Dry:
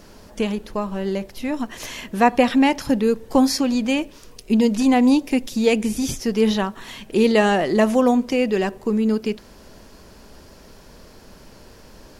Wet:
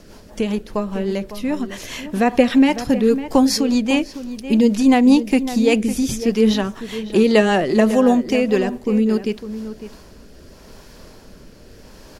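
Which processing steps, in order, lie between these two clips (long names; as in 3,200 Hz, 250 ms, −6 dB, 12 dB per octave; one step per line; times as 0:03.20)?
rotating-speaker cabinet horn 5 Hz, later 0.8 Hz, at 0:09.27
slap from a distant wall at 95 metres, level −12 dB
level +4 dB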